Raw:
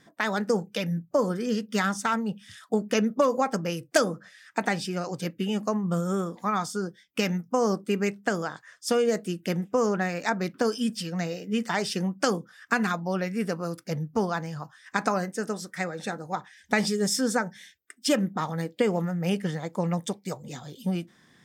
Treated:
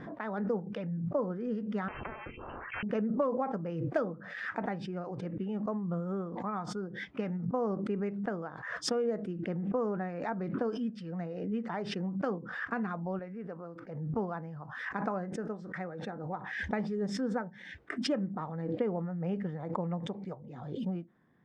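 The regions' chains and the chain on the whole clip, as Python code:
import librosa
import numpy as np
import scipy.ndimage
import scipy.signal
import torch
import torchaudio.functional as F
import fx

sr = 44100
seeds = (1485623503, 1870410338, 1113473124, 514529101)

y = fx.chain(x, sr, fx.freq_invert(carrier_hz=2900),
    fx.spectral_comp(ratio=10.0), at=(1.88, 2.83))
y = fx.chain(y, sr, fx.highpass(hz=1100.0, slope=6),
    fx.tilt_eq(slope=-3.0), at=(13.19, 14.14))
y = scipy.signal.sosfilt(scipy.signal.butter(2, 1200.0, 'lowpass', fs=sr, output='sos'), y)
y = fx.pre_swell(y, sr, db_per_s=45.0)
y = y * librosa.db_to_amplitude(-7.5)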